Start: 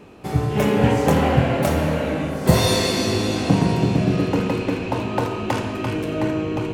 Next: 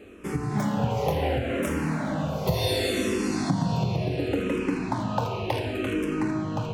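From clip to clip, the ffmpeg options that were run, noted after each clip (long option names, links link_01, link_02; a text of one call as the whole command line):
ffmpeg -i in.wav -filter_complex "[0:a]acompressor=threshold=-19dB:ratio=6,asplit=2[link_01][link_02];[link_02]afreqshift=-0.69[link_03];[link_01][link_03]amix=inputs=2:normalize=1" out.wav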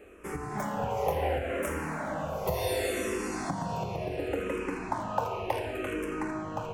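ffmpeg -i in.wav -af "equalizer=frequency=125:width_type=o:width=1:gain=-12,equalizer=frequency=250:width_type=o:width=1:gain=-9,equalizer=frequency=4000:width_type=o:width=1:gain=-12" out.wav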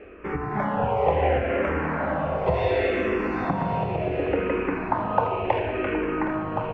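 ffmpeg -i in.wav -af "lowpass=frequency=2800:width=0.5412,lowpass=frequency=2800:width=1.3066,aecho=1:1:767:0.178,volume=7.5dB" out.wav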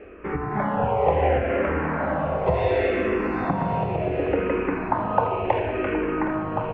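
ffmpeg -i in.wav -af "aemphasis=mode=reproduction:type=50fm,volume=1dB" out.wav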